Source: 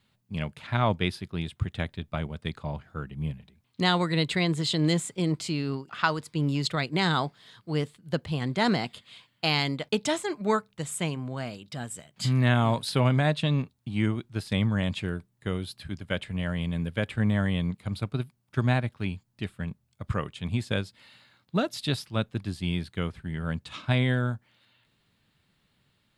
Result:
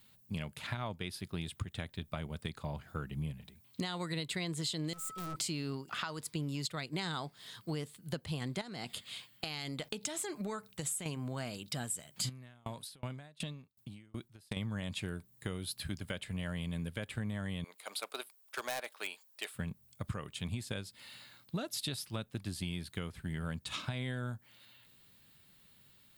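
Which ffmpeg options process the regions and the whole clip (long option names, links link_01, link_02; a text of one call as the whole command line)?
ffmpeg -i in.wav -filter_complex "[0:a]asettb=1/sr,asplit=3[link_01][link_02][link_03];[link_01]atrim=end=4.934[link_04];[link_02]atrim=start=4.93:end=5.36,asetpts=PTS-STARTPTS,afade=type=in:duration=0.004:curve=qsin,afade=type=out:start_time=0.426:duration=0.004:curve=qsin,aeval=exprs='(tanh(100*val(0)+0.55)-tanh(0.55))/100':channel_layout=same,aeval=exprs='val(0)+0.00891*sin(2*PI*1300*n/s)':channel_layout=same[link_05];[link_03]atrim=start=5.356[link_06];[link_04][link_05]acrossfade=duration=0.004:curve1=hsin:curve2=qsin[link_07];[link_07][link_06]acrossfade=duration=0.004:curve1=qsin:curve2=hsin,asettb=1/sr,asplit=3[link_08][link_09][link_10];[link_08]atrim=end=8.614[link_11];[link_09]atrim=start=8.61:end=11.06,asetpts=PTS-STARTPTS,afade=type=in:duration=0.004:curve=qsin,afade=type=out:start_time=2.446:duration=0.004:curve=qsin,bandreject=frequency=1000:width=16,acompressor=threshold=-34dB:ratio=10:attack=3.2:release=140:knee=1:detection=peak[link_12];[link_10]atrim=start=11.056[link_13];[link_11][link_12]acrossfade=duration=0.004:curve1=hsin:curve2=qsin[link_14];[link_14][link_13]acrossfade=duration=0.004:curve1=qsin:curve2=hsin,asettb=1/sr,asplit=3[link_15][link_16][link_17];[link_15]atrim=end=12.294[link_18];[link_16]atrim=start=12.29:end=14.57,asetpts=PTS-STARTPTS,afade=type=in:duration=0.004:curve=qsin,afade=type=out:start_time=2.276:duration=0.004:curve=qsin,acompressor=threshold=-31dB:ratio=16:attack=3.2:release=140:knee=1:detection=peak,aeval=exprs='val(0)*pow(10,-32*if(lt(mod(2.7*n/s,1),2*abs(2.7)/1000),1-mod(2.7*n/s,1)/(2*abs(2.7)/1000),(mod(2.7*n/s,1)-2*abs(2.7)/1000)/(1-2*abs(2.7)/1000))/20)':channel_layout=same[link_19];[link_17]atrim=start=14.566[link_20];[link_18][link_19]acrossfade=duration=0.004:curve1=hsin:curve2=qsin[link_21];[link_21][link_20]acrossfade=duration=0.004:curve1=qsin:curve2=hsin,asettb=1/sr,asplit=3[link_22][link_23][link_24];[link_22]atrim=end=17.644[link_25];[link_23]atrim=start=17.64:end=19.55,asetpts=PTS-STARTPTS,afade=type=in:duration=0.004:curve=qsin,afade=type=out:start_time=1.906:duration=0.004:curve=qsin,highpass=frequency=490:width=0.5412,highpass=frequency=490:width=1.3066,asoftclip=type=hard:threshold=-29dB[link_26];[link_24]atrim=start=19.546[link_27];[link_25][link_26]acrossfade=duration=0.004:curve1=hsin:curve2=qsin[link_28];[link_28][link_27]acrossfade=duration=0.004:curve1=qsin:curve2=hsin,alimiter=limit=-19.5dB:level=0:latency=1:release=499,aemphasis=mode=production:type=50fm,acompressor=threshold=-36dB:ratio=5,volume=1dB" out.wav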